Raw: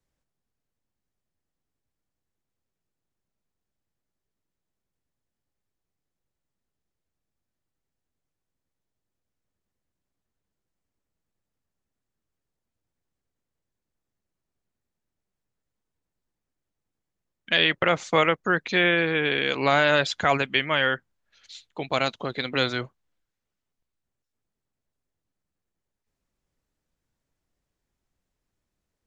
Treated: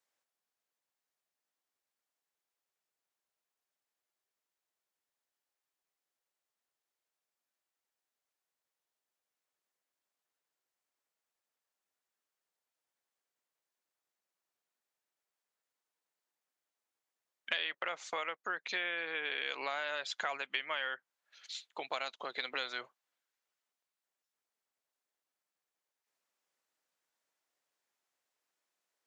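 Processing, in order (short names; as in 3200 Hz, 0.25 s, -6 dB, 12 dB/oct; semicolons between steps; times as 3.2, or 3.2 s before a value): compressor 12:1, threshold -31 dBFS, peak gain reduction 16.5 dB; HPF 670 Hz 12 dB/oct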